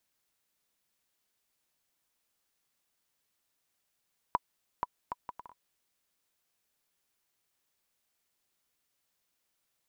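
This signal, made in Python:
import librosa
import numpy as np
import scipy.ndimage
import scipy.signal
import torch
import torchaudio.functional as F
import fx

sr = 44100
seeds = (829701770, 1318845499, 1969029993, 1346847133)

y = fx.bouncing_ball(sr, first_gap_s=0.48, ratio=0.6, hz=983.0, decay_ms=32.0, level_db=-14.0)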